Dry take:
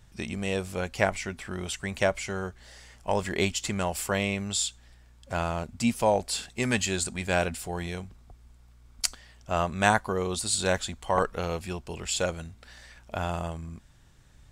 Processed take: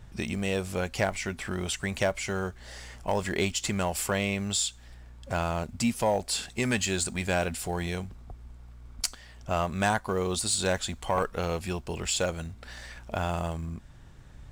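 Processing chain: in parallel at -8.5 dB: short-mantissa float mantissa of 2-bit; on the sum: compressor 1.5:1, threshold -42 dBFS, peak gain reduction 10.5 dB; soft clip -19.5 dBFS, distortion -20 dB; mismatched tape noise reduction decoder only; gain +5 dB

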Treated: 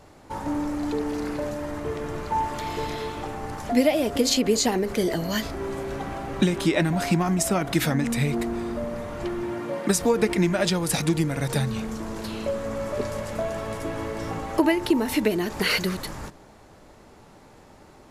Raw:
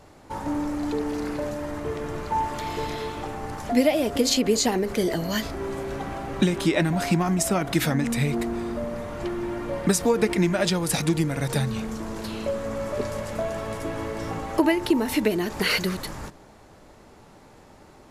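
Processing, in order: 9.43–9.88 HPF 61 Hz -> 210 Hz 24 dB/oct

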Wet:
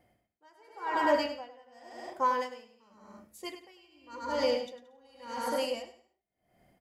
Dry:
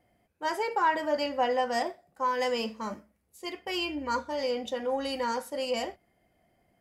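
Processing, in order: on a send: bouncing-ball echo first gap 0.1 s, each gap 0.75×, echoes 5; on the sum: dB-linear tremolo 0.9 Hz, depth 33 dB; gain +1.5 dB

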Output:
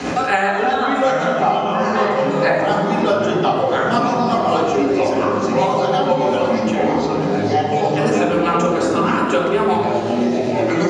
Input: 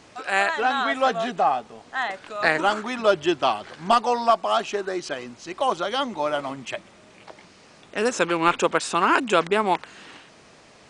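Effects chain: rotary speaker horn 8 Hz; echoes that change speed 0.652 s, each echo -4 st, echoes 3; tape echo 85 ms, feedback 90%, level -8 dB, low-pass 1500 Hz; reverb RT60 0.95 s, pre-delay 3 ms, DRR -4.5 dB; three-band squash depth 100%; gain -6.5 dB

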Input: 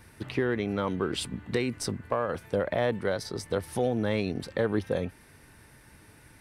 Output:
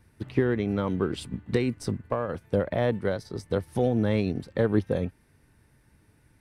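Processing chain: low shelf 390 Hz +8.5 dB; upward expander 1.5:1, over -43 dBFS

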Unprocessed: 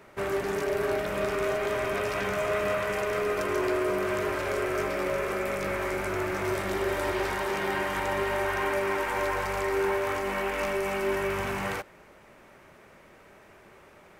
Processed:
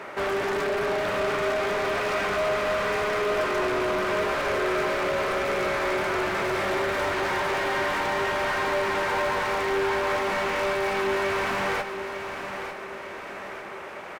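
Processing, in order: overdrive pedal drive 28 dB, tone 2100 Hz, clips at -16.5 dBFS; feedback echo 0.901 s, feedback 44%, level -9 dB; gain -3 dB

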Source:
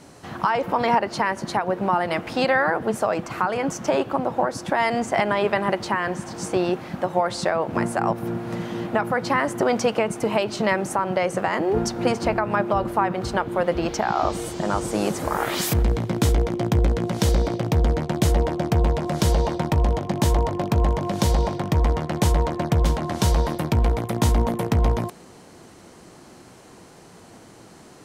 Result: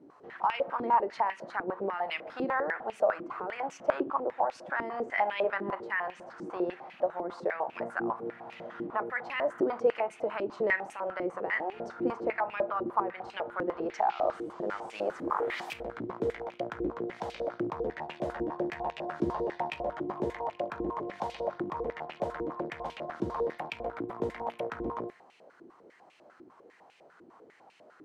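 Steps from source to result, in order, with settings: 17.84–20.33 doubler 14 ms -5.5 dB; reverb RT60 0.40 s, pre-delay 17 ms, DRR 13 dB; stepped band-pass 10 Hz 330–2600 Hz

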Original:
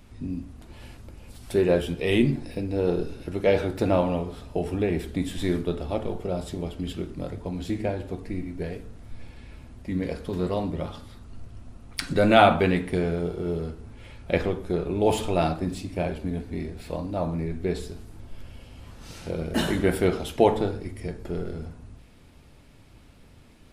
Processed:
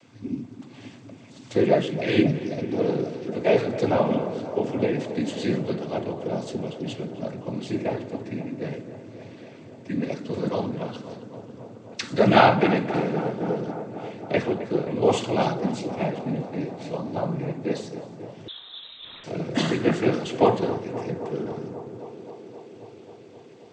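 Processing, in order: noise vocoder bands 16; on a send: tape echo 0.266 s, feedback 88%, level -12 dB, low-pass 1900 Hz; 18.48–19.24 on the sum: inverted band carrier 3900 Hz; gain +1.5 dB

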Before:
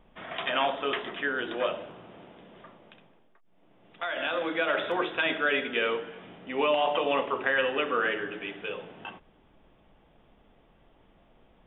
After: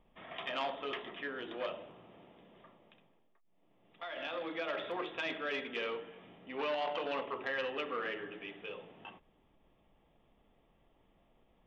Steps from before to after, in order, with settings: notch 1500 Hz, Q 7.2; core saturation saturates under 1400 Hz; gain -8.5 dB

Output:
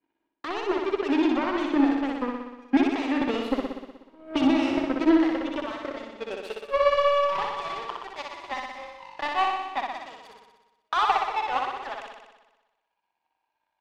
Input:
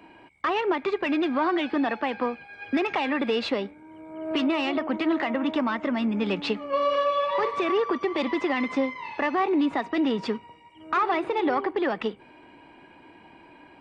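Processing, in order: high-pass sweep 260 Hz -> 810 Hz, 4.55–7.58; power-law curve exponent 2; flutter echo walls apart 10.5 m, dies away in 1.1 s

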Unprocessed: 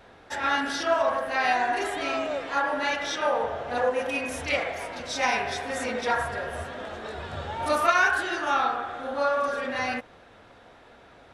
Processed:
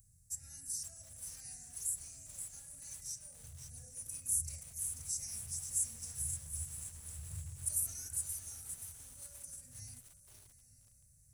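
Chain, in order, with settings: elliptic band-stop 130–7800 Hz, stop band 40 dB; pre-emphasis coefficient 0.8; on a send: diffused feedback echo 0.85 s, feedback 41%, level -15 dB; on the sum: lo-fi delay 0.527 s, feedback 55%, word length 10-bit, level -7 dB; gain +9.5 dB

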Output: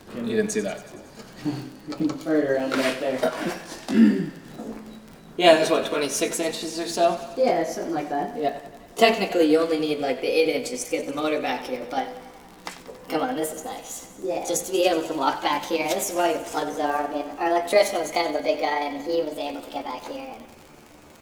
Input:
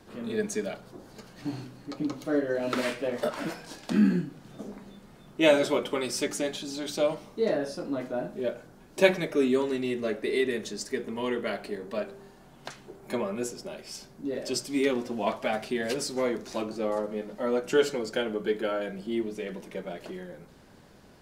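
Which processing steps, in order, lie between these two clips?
gliding pitch shift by +7 st starting unshifted; crackle 36/s -40 dBFS; thinning echo 93 ms, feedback 71%, high-pass 280 Hz, level -14.5 dB; gain +6.5 dB

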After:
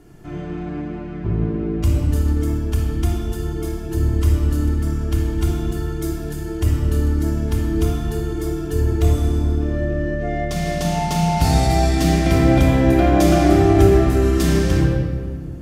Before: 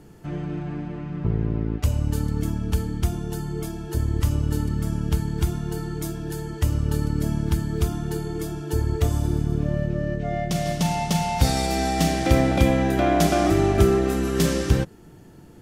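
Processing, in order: shoebox room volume 3000 m³, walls mixed, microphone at 3.2 m; gain -2 dB

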